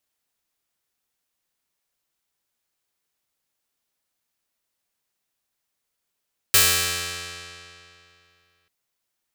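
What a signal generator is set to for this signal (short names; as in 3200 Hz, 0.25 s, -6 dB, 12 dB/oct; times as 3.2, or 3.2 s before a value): plucked string F2, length 2.14 s, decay 2.68 s, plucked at 0.35, bright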